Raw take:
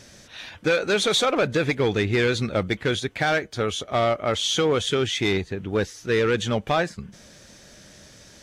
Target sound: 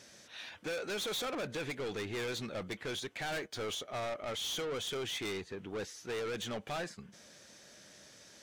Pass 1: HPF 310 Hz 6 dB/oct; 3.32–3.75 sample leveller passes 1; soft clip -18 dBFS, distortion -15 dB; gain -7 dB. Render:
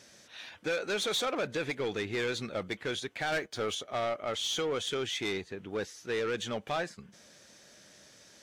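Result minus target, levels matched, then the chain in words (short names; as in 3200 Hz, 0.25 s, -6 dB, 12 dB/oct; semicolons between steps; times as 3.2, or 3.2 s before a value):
soft clip: distortion -9 dB
HPF 310 Hz 6 dB/oct; 3.32–3.75 sample leveller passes 1; soft clip -27.5 dBFS, distortion -7 dB; gain -7 dB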